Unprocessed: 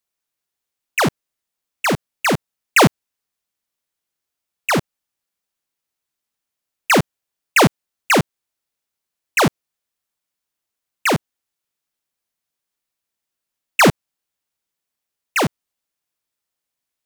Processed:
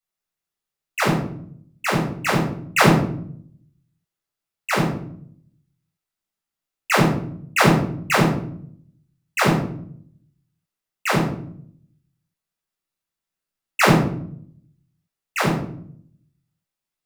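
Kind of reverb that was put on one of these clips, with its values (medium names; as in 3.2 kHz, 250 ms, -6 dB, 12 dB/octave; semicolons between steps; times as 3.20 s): simulated room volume 1000 m³, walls furnished, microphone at 6.8 m; trim -11 dB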